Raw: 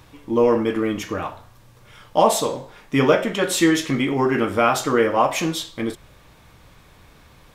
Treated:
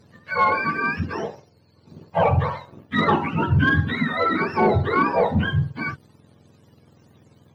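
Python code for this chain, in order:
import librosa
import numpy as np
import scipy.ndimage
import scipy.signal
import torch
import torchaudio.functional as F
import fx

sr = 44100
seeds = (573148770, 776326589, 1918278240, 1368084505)

y = fx.octave_mirror(x, sr, pivot_hz=720.0)
y = fx.leveller(y, sr, passes=1)
y = fx.lowpass(y, sr, hz=2700.0, slope=6)
y = y * librosa.db_to_amplitude(-2.0)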